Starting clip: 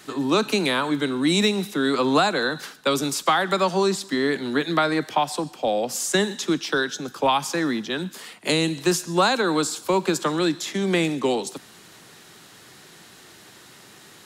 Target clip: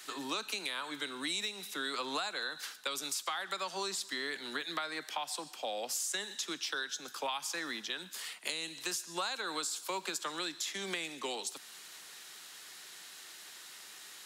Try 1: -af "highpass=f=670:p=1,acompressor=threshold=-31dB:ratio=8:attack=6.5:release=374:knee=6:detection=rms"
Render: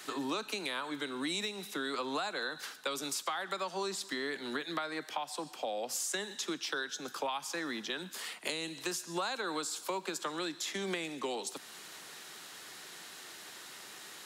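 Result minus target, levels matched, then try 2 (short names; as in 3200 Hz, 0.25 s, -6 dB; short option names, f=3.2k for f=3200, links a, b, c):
500 Hz band +4.5 dB
-af "highpass=f=2.1k:p=1,acompressor=threshold=-31dB:ratio=8:attack=6.5:release=374:knee=6:detection=rms"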